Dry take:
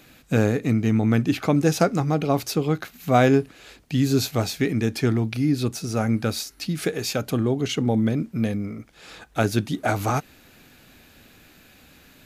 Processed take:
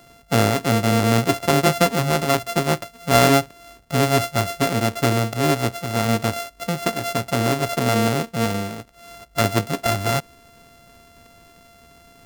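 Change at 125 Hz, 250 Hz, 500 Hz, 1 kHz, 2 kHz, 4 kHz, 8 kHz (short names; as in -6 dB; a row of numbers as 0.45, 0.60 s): +1.0, -1.0, +3.5, +6.5, +6.0, +6.5, +6.0 dB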